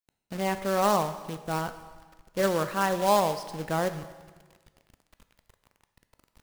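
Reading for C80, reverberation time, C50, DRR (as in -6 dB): 13.5 dB, 1.4 s, 12.0 dB, 10.0 dB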